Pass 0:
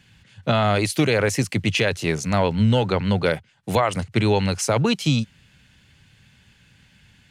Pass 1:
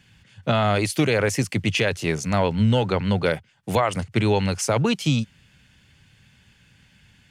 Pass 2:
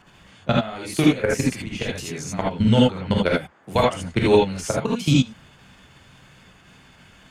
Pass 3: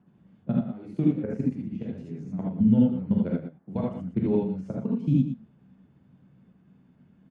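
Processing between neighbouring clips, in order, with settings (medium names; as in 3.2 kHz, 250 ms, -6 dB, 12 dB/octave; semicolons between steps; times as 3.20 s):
band-stop 4 kHz, Q 18; trim -1 dB
level held to a coarse grid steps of 19 dB; gated-style reverb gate 100 ms rising, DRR -3 dB; band noise 150–1700 Hz -59 dBFS; trim +2 dB
band-pass filter 200 Hz, Q 2.1; delay 116 ms -10.5 dB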